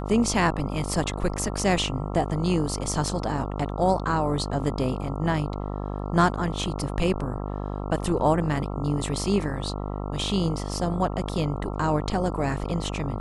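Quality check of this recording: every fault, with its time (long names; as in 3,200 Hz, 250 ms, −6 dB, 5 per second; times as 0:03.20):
mains buzz 50 Hz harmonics 27 −31 dBFS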